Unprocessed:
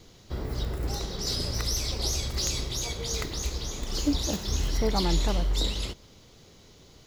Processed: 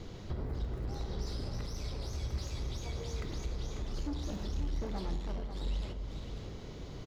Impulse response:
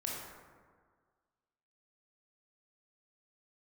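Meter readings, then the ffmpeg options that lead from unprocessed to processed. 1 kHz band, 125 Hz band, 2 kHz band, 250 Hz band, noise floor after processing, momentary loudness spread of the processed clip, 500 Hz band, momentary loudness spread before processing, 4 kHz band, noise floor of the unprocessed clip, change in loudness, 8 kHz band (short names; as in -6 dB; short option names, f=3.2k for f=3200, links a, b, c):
-11.0 dB, -6.0 dB, -11.5 dB, -9.5 dB, -45 dBFS, 5 LU, -9.5 dB, 8 LU, -17.0 dB, -54 dBFS, -10.5 dB, -20.0 dB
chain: -filter_complex "[0:a]asoftclip=type=tanh:threshold=-27.5dB,acompressor=threshold=-44dB:ratio=12,lowpass=f=1.8k:p=1,aecho=1:1:544:0.376,asplit=2[a][b];[1:a]atrim=start_sample=2205,lowshelf=f=260:g=10[c];[b][c]afir=irnorm=-1:irlink=0,volume=-9.5dB[d];[a][d]amix=inputs=2:normalize=0,volume=5dB"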